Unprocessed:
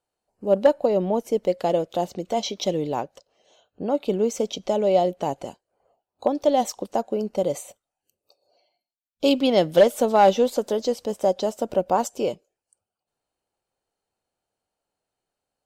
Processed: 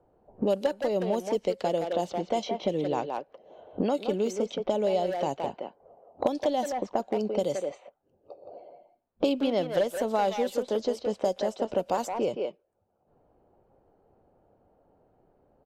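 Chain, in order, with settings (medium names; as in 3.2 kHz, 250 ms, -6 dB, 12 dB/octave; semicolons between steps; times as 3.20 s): level-controlled noise filter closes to 610 Hz, open at -18.5 dBFS; speakerphone echo 170 ms, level -6 dB; three bands compressed up and down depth 100%; trim -6.5 dB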